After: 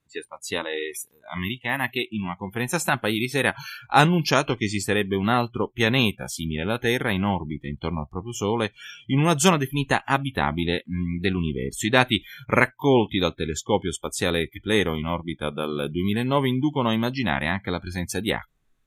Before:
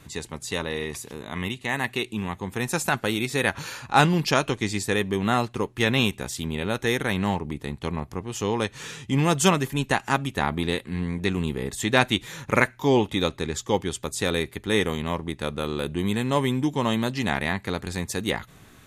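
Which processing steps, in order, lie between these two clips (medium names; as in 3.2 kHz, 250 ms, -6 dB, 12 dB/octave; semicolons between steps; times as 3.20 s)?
spectral noise reduction 28 dB; 0.73–1.98 s: treble shelf 11 kHz +9.5 dB; trim +1.5 dB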